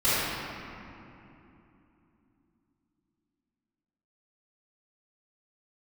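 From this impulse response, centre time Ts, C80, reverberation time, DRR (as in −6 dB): 184 ms, −3.0 dB, 3.0 s, −15.0 dB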